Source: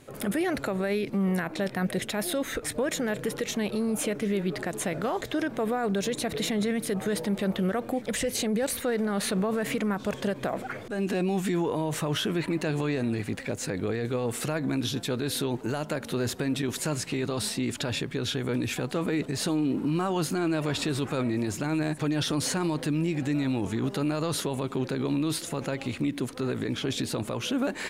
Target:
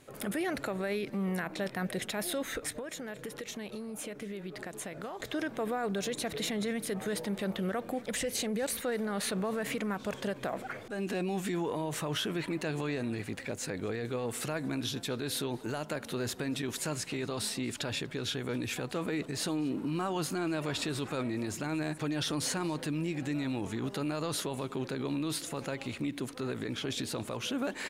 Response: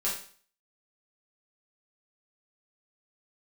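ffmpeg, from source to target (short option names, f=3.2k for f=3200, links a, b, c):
-filter_complex "[0:a]lowshelf=f=450:g=-4,asettb=1/sr,asplit=3[a][b][c];[a]atrim=end=2.694[d];[b]atrim=start=2.69:end=5.2,asetpts=PTS-STARTPTS,afade=t=in:d=0.004:c=qsin,afade=t=out:st=2.506:d=0.004:c=qsin,acompressor=threshold=-34dB:ratio=6[e];[c]atrim=start=5.196[f];[d][e]acrossfade=d=0.004:c1=hsin:c2=qsin[g];[g][f]acrossfade=d=0.004:c1=qsin:c2=hsin,asplit=2[h][i];[i]adelay=239.1,volume=-22dB,highshelf=f=4k:g=-5.38[j];[h][j]amix=inputs=2:normalize=0,volume=-3.5dB"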